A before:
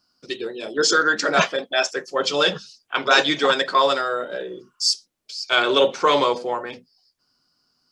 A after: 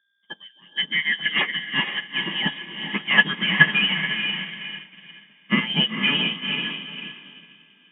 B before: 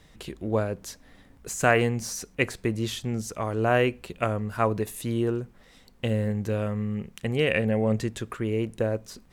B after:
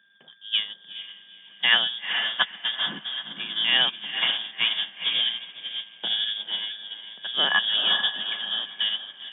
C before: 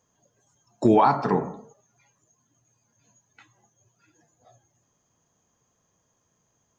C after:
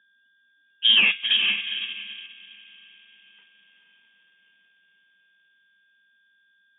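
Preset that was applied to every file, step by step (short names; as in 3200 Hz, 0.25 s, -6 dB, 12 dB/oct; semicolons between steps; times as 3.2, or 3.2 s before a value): on a send: diffused feedback echo 0.457 s, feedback 55%, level -4 dB; on the sum: whine 1900 Hz -46 dBFS; in parallel at -0.5 dB: limiter -12.5 dBFS; on the sum: hum 60 Hz, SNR 31 dB; sample leveller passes 1; inverted band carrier 3500 Hz; elliptic high-pass 150 Hz; small resonant body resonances 200/1700 Hz, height 15 dB, ringing for 60 ms; upward expander 2.5:1, over -23 dBFS; gain -4 dB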